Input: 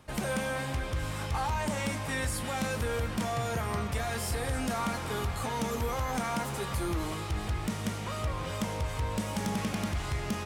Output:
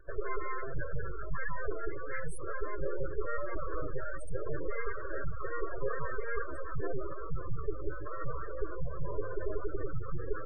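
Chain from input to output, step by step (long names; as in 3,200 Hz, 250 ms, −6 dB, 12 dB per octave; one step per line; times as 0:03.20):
full-wave rectification
phaser with its sweep stopped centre 810 Hz, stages 6
gate on every frequency bin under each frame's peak −25 dB strong
level +5 dB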